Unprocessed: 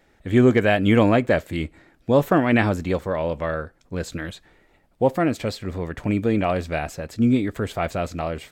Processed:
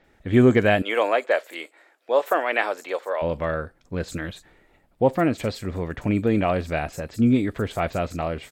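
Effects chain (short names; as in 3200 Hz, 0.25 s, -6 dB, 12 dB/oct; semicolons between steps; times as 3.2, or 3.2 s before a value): 0.82–3.22 HPF 470 Hz 24 dB/oct; bands offset in time lows, highs 40 ms, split 5500 Hz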